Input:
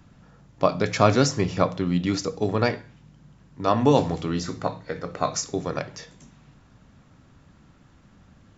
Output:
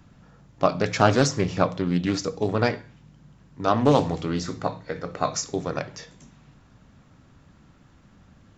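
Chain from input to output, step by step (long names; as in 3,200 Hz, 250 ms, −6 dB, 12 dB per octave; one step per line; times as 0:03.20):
highs frequency-modulated by the lows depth 0.31 ms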